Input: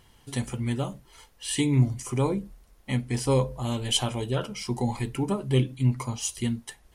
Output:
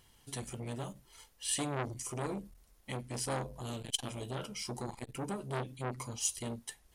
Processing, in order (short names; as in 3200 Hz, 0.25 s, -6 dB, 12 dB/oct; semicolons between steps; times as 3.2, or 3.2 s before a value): high shelf 3600 Hz +7.5 dB; core saturation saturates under 1900 Hz; gain -8 dB